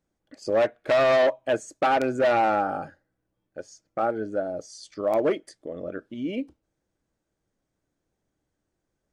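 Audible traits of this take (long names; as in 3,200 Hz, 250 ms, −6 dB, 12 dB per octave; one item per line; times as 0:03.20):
background noise floor −81 dBFS
spectral slope −3.0 dB per octave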